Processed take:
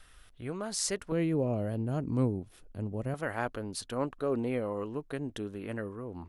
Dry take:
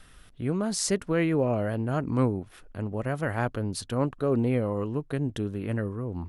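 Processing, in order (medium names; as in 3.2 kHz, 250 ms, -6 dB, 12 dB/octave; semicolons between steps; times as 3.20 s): peaking EQ 190 Hz -9.5 dB 2 oct, from 1.12 s 1.5 kHz, from 3.14 s 110 Hz; trim -3 dB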